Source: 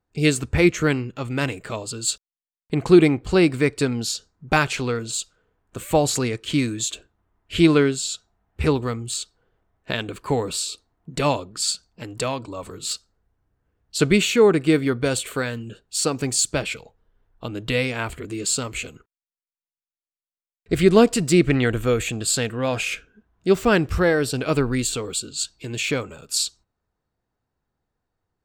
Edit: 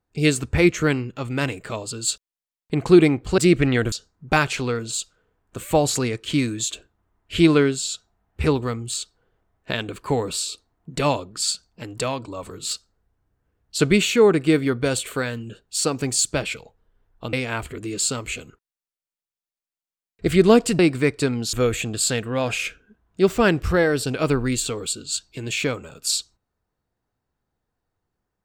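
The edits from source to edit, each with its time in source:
0:03.38–0:04.12: swap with 0:21.26–0:21.80
0:17.53–0:17.80: remove

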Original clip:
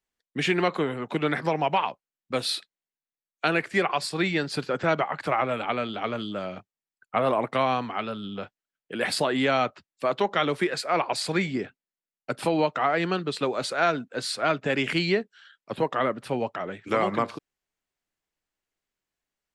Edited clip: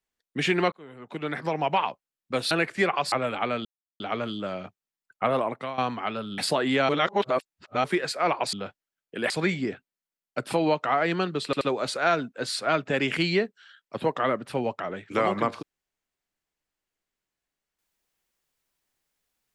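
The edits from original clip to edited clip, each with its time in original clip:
0:00.72–0:01.78: fade in
0:02.51–0:03.47: remove
0:04.08–0:05.39: remove
0:05.92: splice in silence 0.35 s
0:07.19–0:07.70: fade out linear, to −15 dB
0:08.30–0:09.07: move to 0:11.22
0:09.58–0:10.53: reverse
0:13.37: stutter 0.08 s, 3 plays

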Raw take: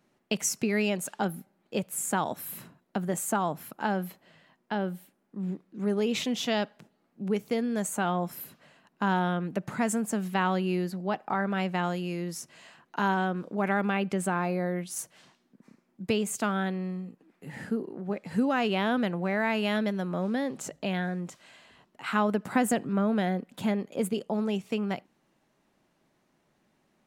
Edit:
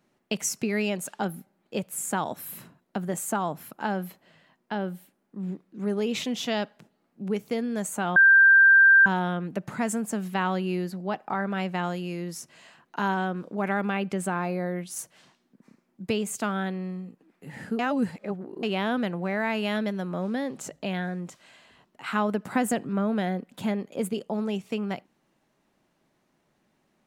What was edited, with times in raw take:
0:08.16–0:09.06: beep over 1,580 Hz −12 dBFS
0:17.79–0:18.63: reverse

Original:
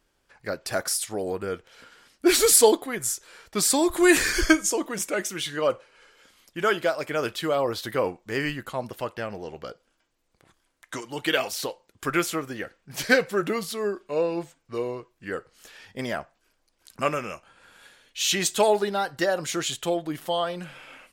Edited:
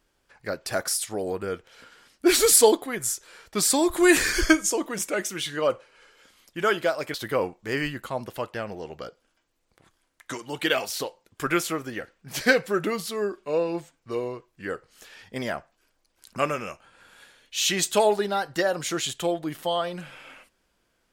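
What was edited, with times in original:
0:07.14–0:07.77: remove

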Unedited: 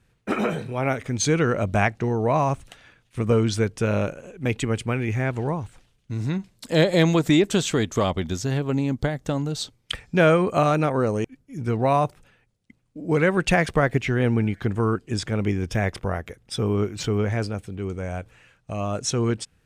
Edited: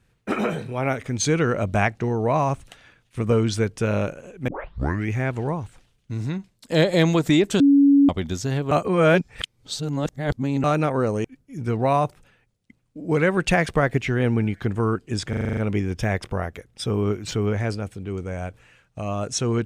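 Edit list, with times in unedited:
0:04.48: tape start 0.62 s
0:06.17–0:06.70: fade out, to −10 dB
0:07.60–0:08.09: beep over 281 Hz −11 dBFS
0:08.71–0:10.64: reverse
0:15.29: stutter 0.04 s, 8 plays

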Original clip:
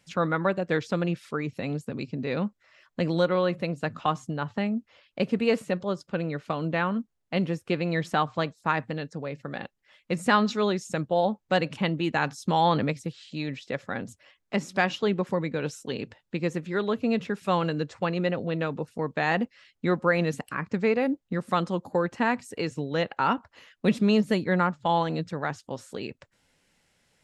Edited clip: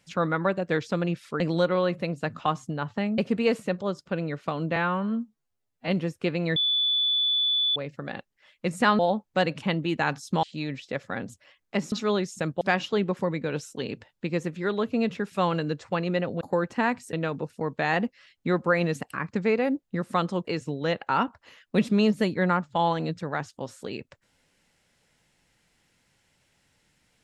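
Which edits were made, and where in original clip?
0:01.40–0:03.00: remove
0:04.78–0:05.20: remove
0:06.78–0:07.34: time-stretch 2×
0:08.02–0:09.22: beep over 3,470 Hz −21 dBFS
0:10.45–0:11.14: move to 0:14.71
0:12.58–0:13.22: remove
0:21.83–0:22.55: move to 0:18.51

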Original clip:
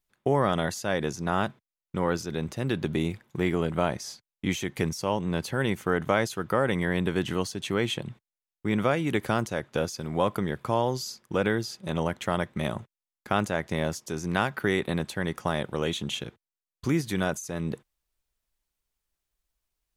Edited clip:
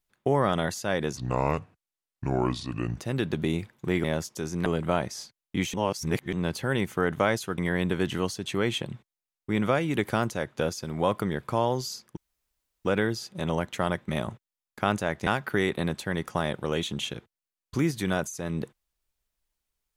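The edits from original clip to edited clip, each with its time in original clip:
0:01.17–0:02.49: play speed 73%
0:04.63–0:05.22: reverse
0:06.47–0:06.74: remove
0:11.33: splice in room tone 0.68 s
0:13.75–0:14.37: move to 0:03.55

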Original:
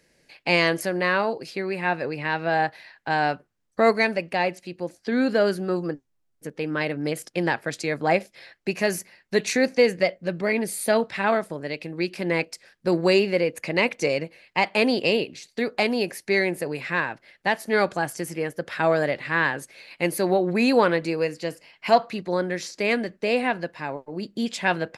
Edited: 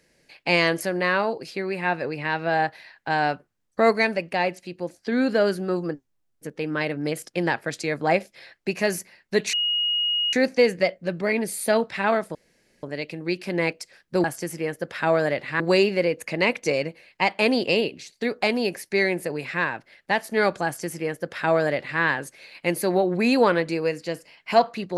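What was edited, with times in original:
0:09.53: insert tone 2,880 Hz −20.5 dBFS 0.80 s
0:11.55: splice in room tone 0.48 s
0:18.01–0:19.37: duplicate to 0:12.96

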